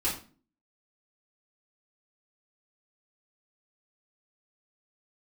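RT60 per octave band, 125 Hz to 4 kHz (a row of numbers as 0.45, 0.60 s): 0.55, 0.60, 0.45, 0.35, 0.35, 0.30 s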